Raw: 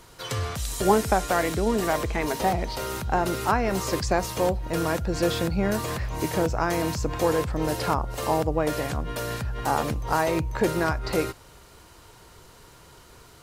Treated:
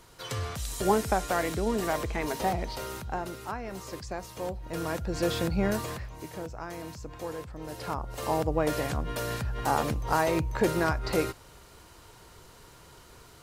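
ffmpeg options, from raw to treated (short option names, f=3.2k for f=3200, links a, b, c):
-af "volume=18.5dB,afade=t=out:st=2.69:d=0.68:silence=0.375837,afade=t=in:st=4.32:d=1.32:silence=0.281838,afade=t=out:st=5.64:d=0.52:silence=0.251189,afade=t=in:st=7.66:d=0.96:silence=0.251189"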